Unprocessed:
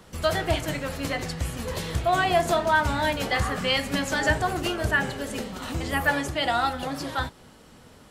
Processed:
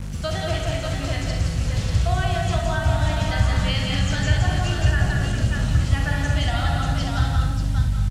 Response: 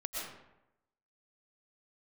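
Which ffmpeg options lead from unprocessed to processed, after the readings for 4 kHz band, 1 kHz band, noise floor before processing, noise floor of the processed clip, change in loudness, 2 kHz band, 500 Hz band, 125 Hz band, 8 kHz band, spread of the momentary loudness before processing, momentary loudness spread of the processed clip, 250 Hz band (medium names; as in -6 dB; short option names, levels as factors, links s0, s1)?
+1.0 dB, -3.5 dB, -51 dBFS, -27 dBFS, +3.0 dB, -2.5 dB, -2.5 dB, +12.5 dB, +1.5 dB, 10 LU, 4 LU, +2.5 dB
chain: -filter_complex "[0:a]aecho=1:1:43|170|589:0.447|0.596|0.531,aeval=exprs='val(0)+0.0158*(sin(2*PI*50*n/s)+sin(2*PI*2*50*n/s)/2+sin(2*PI*3*50*n/s)/3+sin(2*PI*4*50*n/s)/4+sin(2*PI*5*50*n/s)/5)':c=same,asplit=2[s0][s1];[1:a]atrim=start_sample=2205,afade=t=out:st=0.27:d=0.01,atrim=end_sample=12348,adelay=65[s2];[s1][s2]afir=irnorm=-1:irlink=0,volume=0.562[s3];[s0][s3]amix=inputs=2:normalize=0,acrossover=split=490|7300[s4][s5][s6];[s4]acompressor=threshold=0.0112:ratio=4[s7];[s5]acompressor=threshold=0.1:ratio=4[s8];[s6]acompressor=threshold=0.00224:ratio=4[s9];[s7][s8][s9]amix=inputs=3:normalize=0,equalizer=f=125:t=o:w=1:g=9,equalizer=f=500:t=o:w=1:g=-8,equalizer=f=1000:t=o:w=1:g=-11,equalizer=f=2000:t=o:w=1:g=-9,equalizer=f=4000:t=o:w=1:g=-7,acrusher=bits=7:mix=0:aa=0.000001,lowpass=9700,asubboost=boost=6:cutoff=130,acrossover=split=7300[s10][s11];[s11]acompressor=threshold=0.00158:ratio=4:attack=1:release=60[s12];[s10][s12]amix=inputs=2:normalize=0,volume=2.37"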